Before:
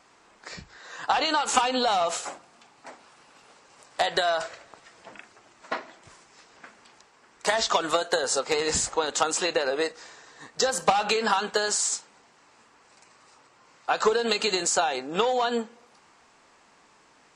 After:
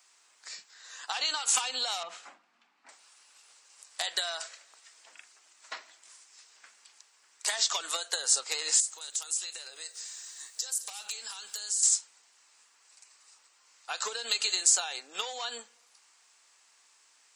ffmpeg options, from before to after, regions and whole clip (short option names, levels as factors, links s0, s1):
-filter_complex "[0:a]asettb=1/sr,asplit=3[s0][s1][s2];[s0]atrim=end=2.034[s3];[s1]atrim=start=2.03:end=2.89,asetpts=PTS-STARTPTS,afade=t=in:d=0.004:c=qsin,afade=t=out:st=0.856:d=0.004:c=qsin,lowpass=2100,lowshelf=f=310:t=q:w=1.5:g=10.5[s4];[s2]atrim=start=2.886[s5];[s3][s4]acrossfade=d=0.004:c1=hsin:c2=qsin[s6];[s6][s5]acrossfade=d=0.004:c1=qsin:c2=hsin,asettb=1/sr,asplit=3[s7][s8][s9];[s7]atrim=end=8.804[s10];[s8]atrim=start=8.8:end=11.83,asetpts=PTS-STARTPTS,afade=t=in:d=0.004:c=qsin,afade=t=out:st=3.026:d=0.004:c=qsin,aemphasis=mode=production:type=75fm,acompressor=threshold=0.01:ratio=2.5:attack=3.2:release=140:knee=1:detection=peak,aecho=1:1:212:0.15,atrim=end_sample=133623[s11];[s9]atrim=start=11.826[s12];[s10][s11]acrossfade=d=0.004:c1=hsin:c2=qsin[s13];[s13][s12]acrossfade=d=0.004:c1=qsin:c2=hsin,highpass=f=210:w=0.5412,highpass=f=210:w=1.3066,aderivative,volume=1.58"